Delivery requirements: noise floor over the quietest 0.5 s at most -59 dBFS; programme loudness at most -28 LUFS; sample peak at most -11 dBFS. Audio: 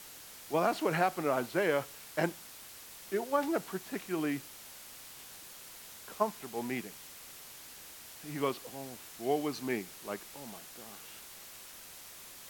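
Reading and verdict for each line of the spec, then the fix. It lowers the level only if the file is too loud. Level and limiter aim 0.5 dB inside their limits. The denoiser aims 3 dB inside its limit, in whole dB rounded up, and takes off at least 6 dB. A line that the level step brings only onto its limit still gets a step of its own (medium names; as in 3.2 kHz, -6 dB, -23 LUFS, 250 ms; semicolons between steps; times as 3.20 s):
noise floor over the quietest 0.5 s -50 dBFS: fail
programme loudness -35.0 LUFS: pass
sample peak -14.5 dBFS: pass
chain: noise reduction 12 dB, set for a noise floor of -50 dBFS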